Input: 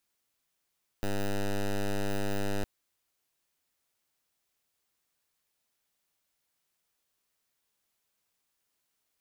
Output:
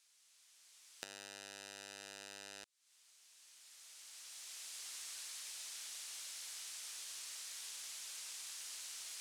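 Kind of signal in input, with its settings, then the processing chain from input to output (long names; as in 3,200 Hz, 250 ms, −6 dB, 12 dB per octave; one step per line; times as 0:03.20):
pulse wave 99.9 Hz, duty 9% −29 dBFS 1.61 s
camcorder AGC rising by 12 dB per second
meter weighting curve ITU-R 468
downward compressor 8 to 1, threshold −45 dBFS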